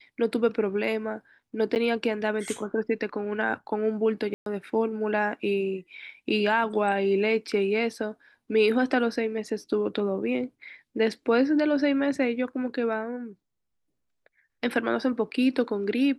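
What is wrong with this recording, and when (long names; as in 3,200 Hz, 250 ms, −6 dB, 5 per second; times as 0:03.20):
0:01.75–0:01.76: drop-out 9.1 ms
0:04.34–0:04.46: drop-out 122 ms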